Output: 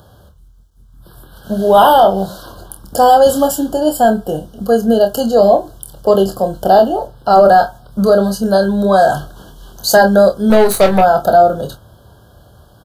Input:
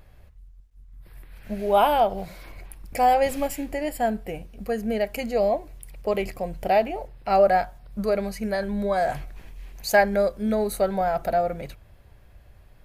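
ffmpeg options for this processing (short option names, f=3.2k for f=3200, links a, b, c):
-filter_complex "[0:a]highpass=100,acrossover=split=240[a][b];[a]crystalizer=i=5.5:c=0[c];[b]asuperstop=centerf=2200:order=20:qfactor=1.7[d];[c][d]amix=inputs=2:normalize=0,asettb=1/sr,asplit=3[e][f][g];[e]atrim=end=10.504[h];[f]atrim=start=10.5:end=11.01,asetpts=PTS-STARTPTS,afade=t=in:d=0.004:c=qsin,afade=t=out:st=0.506:d=0.004:c=qsin,aeval=exprs='0.251*(cos(1*acos(clip(val(0)/0.251,-1,1)))-cos(1*PI/2))+0.0251*(cos(8*acos(clip(val(0)/0.251,-1,1)))-cos(8*PI/2))':c=same[i];[g]atrim=start=11.006[j];[h][i]acrossfade=d=0.004:c1=hsin:c2=qsin[k];[k][j]acrossfade=d=0.004:c1=qsin:c2=hsin,asplit=2[l][m];[m]aecho=0:1:26|46:0.447|0.168[n];[l][n]amix=inputs=2:normalize=0,apsyclip=15.5dB,volume=-2dB"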